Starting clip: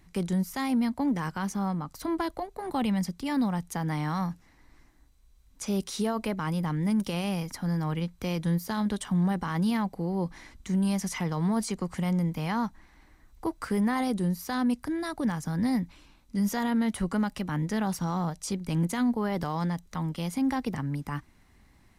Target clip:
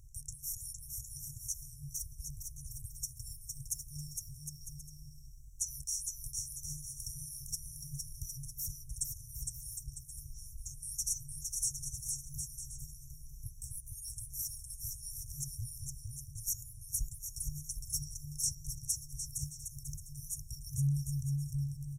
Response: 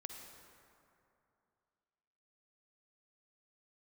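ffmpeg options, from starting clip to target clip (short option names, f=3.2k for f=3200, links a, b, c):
-af "aecho=1:1:460|759|953.4|1080|1162:0.631|0.398|0.251|0.158|0.1,afftfilt=real='re*(1-between(b*sr/4096,150,5400))':imag='im*(1-between(b*sr/4096,150,5400))':win_size=4096:overlap=0.75,volume=4.5dB"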